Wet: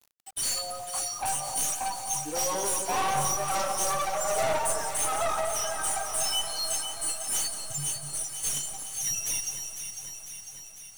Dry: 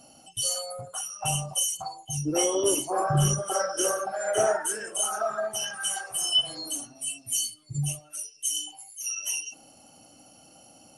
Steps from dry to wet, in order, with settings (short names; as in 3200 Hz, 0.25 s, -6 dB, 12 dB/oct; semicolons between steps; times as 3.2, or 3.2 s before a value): per-bin expansion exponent 1.5; band shelf 750 Hz +11.5 dB; in parallel at -2 dB: compressor, threshold -42 dBFS, peak gain reduction 28 dB; on the sum: ten-band EQ 125 Hz -6 dB, 250 Hz -11 dB, 500 Hz -8 dB, 1000 Hz +8 dB, 2000 Hz -11 dB, 4000 Hz +7 dB, 8000 Hz +10 dB; one-sided clip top -30.5 dBFS; requantised 8-bit, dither none; soft clip -25 dBFS, distortion -8 dB; echo with dull and thin repeats by turns 0.25 s, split 1300 Hz, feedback 80%, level -6.5 dB; lo-fi delay 0.176 s, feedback 80%, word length 8-bit, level -15 dB